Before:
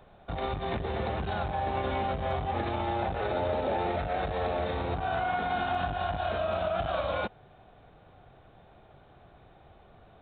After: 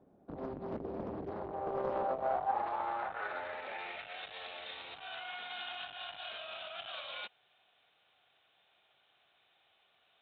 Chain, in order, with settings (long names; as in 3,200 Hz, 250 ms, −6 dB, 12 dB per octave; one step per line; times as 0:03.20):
band-pass filter sweep 280 Hz → 3,100 Hz, 0:01.10–0:04.19
highs frequency-modulated by the lows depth 0.96 ms
level +1.5 dB